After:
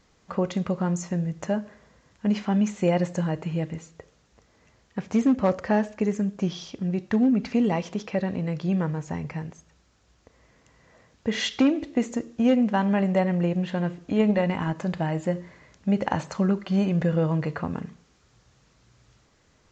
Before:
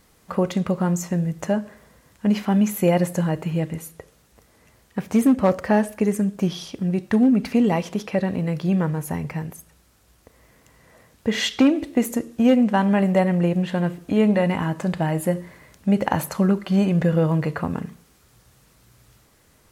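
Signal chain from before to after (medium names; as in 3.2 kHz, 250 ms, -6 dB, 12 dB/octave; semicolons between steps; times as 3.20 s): 14.17–14.75 s: transient shaper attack +11 dB, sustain -1 dB; resampled via 16 kHz; trim -4 dB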